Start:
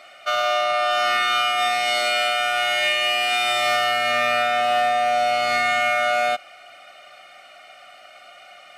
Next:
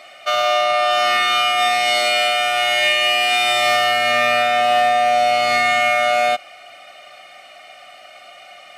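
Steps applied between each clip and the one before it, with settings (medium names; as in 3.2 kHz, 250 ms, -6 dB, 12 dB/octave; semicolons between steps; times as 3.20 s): band-stop 1.4 kHz, Q 6.8; trim +4.5 dB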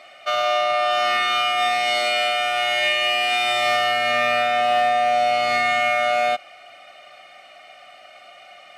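treble shelf 6.1 kHz -7 dB; trim -3 dB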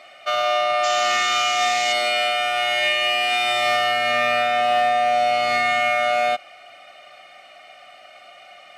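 painted sound noise, 0.83–1.93 s, 1.8–7.5 kHz -31 dBFS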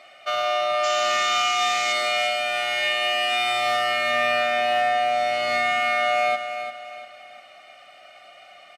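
feedback delay 345 ms, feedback 37%, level -9 dB; trim -3 dB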